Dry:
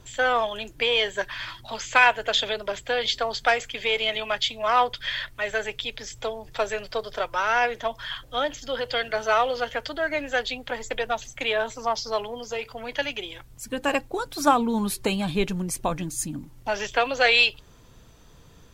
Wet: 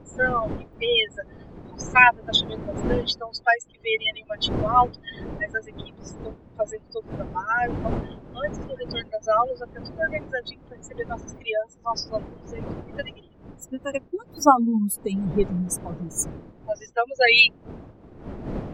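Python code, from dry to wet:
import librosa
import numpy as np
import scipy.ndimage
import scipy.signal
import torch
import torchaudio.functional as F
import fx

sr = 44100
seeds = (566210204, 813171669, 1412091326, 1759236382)

y = fx.bin_expand(x, sr, power=3.0)
y = fx.dmg_wind(y, sr, seeds[0], corner_hz=340.0, level_db=-43.0)
y = F.gain(torch.from_numpy(y), 7.0).numpy()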